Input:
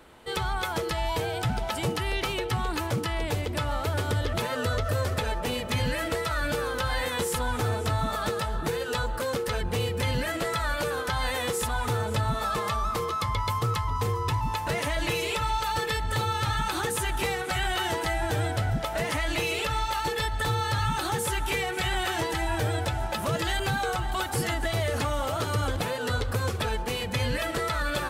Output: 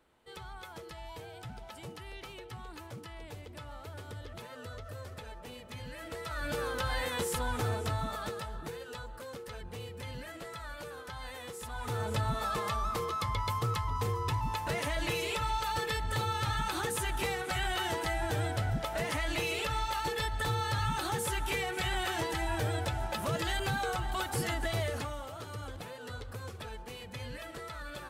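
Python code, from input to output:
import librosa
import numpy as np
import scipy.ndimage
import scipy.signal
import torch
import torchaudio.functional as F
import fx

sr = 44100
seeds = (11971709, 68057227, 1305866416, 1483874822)

y = fx.gain(x, sr, db=fx.line((5.87, -17.0), (6.62, -5.0), (7.73, -5.0), (9.04, -15.0), (11.59, -15.0), (12.05, -5.0), (24.81, -5.0), (25.29, -14.5)))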